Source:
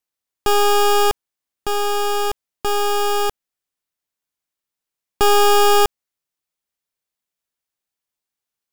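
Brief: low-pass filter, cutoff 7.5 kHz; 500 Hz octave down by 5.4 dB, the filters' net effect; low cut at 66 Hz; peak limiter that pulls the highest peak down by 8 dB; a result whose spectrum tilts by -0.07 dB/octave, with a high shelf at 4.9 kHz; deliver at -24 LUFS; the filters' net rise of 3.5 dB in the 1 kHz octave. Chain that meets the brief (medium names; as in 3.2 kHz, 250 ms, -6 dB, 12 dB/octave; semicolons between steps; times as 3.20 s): high-pass 66 Hz; low-pass 7.5 kHz; peaking EQ 500 Hz -8.5 dB; peaking EQ 1 kHz +7.5 dB; treble shelf 4.9 kHz +6 dB; trim -2.5 dB; peak limiter -14.5 dBFS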